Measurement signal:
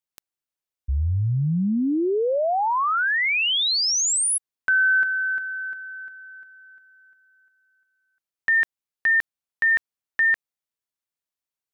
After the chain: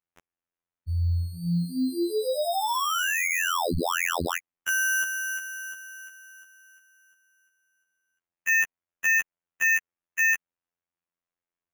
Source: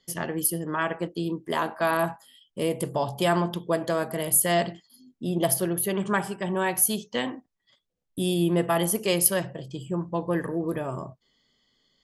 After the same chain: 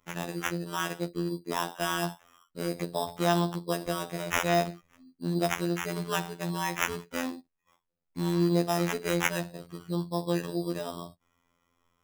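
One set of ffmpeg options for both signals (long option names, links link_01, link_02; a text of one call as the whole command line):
ffmpeg -i in.wav -af "highshelf=frequency=10000:gain=-5.5,acrusher=samples=10:mix=1:aa=0.000001,afftfilt=real='hypot(re,im)*cos(PI*b)':imag='0':win_size=2048:overlap=0.75,volume=-1dB" out.wav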